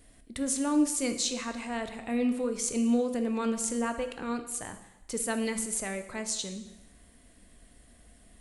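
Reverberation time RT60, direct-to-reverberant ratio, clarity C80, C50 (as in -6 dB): 0.95 s, 7.5 dB, 12.5 dB, 10.0 dB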